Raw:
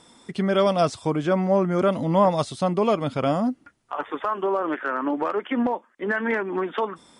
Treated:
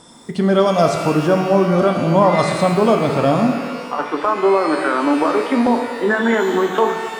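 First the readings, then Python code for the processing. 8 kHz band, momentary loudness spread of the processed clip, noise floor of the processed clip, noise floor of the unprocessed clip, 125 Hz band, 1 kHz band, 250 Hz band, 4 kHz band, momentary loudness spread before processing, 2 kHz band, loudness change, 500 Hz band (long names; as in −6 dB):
+10.0 dB, 6 LU, −31 dBFS, −59 dBFS, +7.5 dB, +7.5 dB, +7.5 dB, +7.5 dB, 8 LU, +7.5 dB, +7.5 dB, +7.5 dB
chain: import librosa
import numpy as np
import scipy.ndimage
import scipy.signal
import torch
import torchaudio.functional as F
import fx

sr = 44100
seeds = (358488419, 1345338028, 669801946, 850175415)

p1 = fx.peak_eq(x, sr, hz=2400.0, db=-6.5, octaves=0.96)
p2 = fx.rider(p1, sr, range_db=4, speed_s=0.5)
p3 = p1 + (p2 * 10.0 ** (1.0 / 20.0))
y = fx.rev_shimmer(p3, sr, seeds[0], rt60_s=1.6, semitones=12, shimmer_db=-8, drr_db=4.5)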